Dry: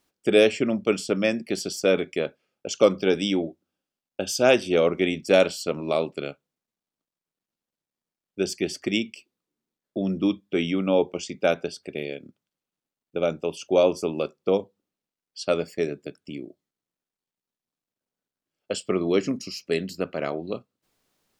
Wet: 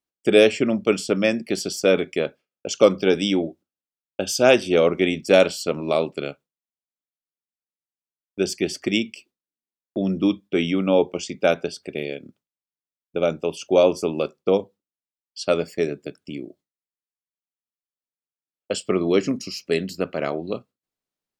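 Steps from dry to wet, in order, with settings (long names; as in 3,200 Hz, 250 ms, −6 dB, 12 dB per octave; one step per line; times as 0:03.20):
noise gate with hold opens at −48 dBFS
level +3 dB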